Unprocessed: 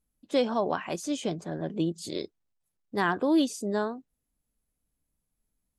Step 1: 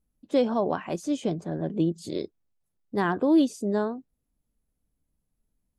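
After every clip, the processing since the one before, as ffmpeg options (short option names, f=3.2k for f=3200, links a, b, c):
-af "tiltshelf=f=900:g=4.5"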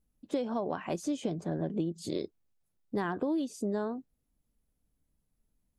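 -af "acompressor=threshold=-28dB:ratio=12"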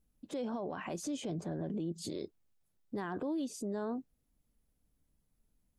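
-af "alimiter=level_in=7dB:limit=-24dB:level=0:latency=1:release=28,volume=-7dB,volume=1dB"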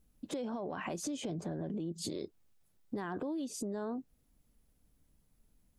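-af "acompressor=threshold=-41dB:ratio=6,volume=6dB"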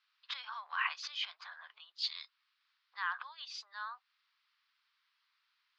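-af "asuperpass=centerf=2300:order=12:qfactor=0.61,volume=10.5dB"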